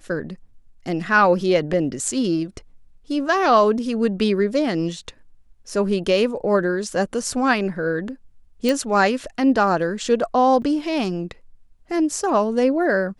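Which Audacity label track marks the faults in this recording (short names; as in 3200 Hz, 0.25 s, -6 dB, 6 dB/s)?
1.730000	1.730000	gap 3.7 ms
8.690000	8.690000	pop
10.620000	10.620000	gap 4.2 ms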